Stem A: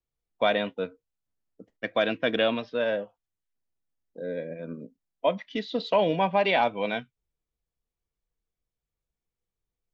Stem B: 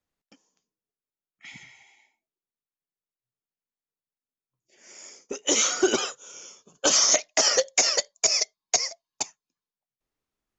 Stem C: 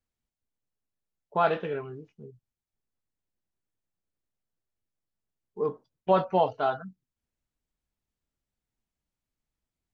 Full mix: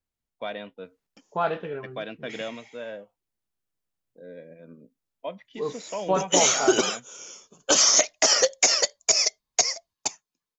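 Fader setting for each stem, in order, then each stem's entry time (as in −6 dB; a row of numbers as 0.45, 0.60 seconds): −10.0, +1.5, −1.5 decibels; 0.00, 0.85, 0.00 seconds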